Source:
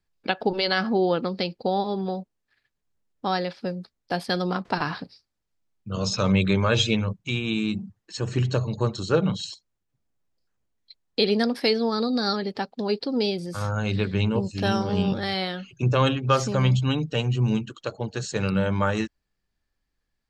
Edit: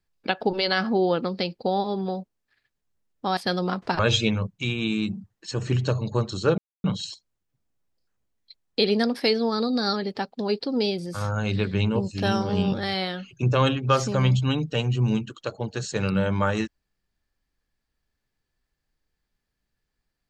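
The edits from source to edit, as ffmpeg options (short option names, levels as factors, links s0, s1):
-filter_complex "[0:a]asplit=4[s0][s1][s2][s3];[s0]atrim=end=3.372[s4];[s1]atrim=start=4.198:end=4.822[s5];[s2]atrim=start=6.648:end=9.24,asetpts=PTS-STARTPTS,afade=t=out:st=2.588:d=0.004:c=hsin,apad=pad_dur=0.26[s6];[s3]atrim=start=9.24,asetpts=PTS-STARTPTS,afade=t=in:d=0.004:c=hsin[s7];[s4][s5]acrossfade=d=0.004:c1=hsin:c2=hsin[s8];[s6][s7]concat=n=2:v=0:a=1[s9];[s8][s9]acrossfade=d=0.004:c1=hsin:c2=hsin"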